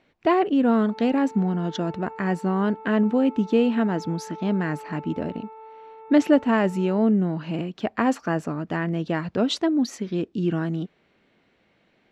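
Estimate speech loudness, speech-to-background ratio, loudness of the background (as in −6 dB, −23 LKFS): −24.0 LKFS, 17.5 dB, −41.5 LKFS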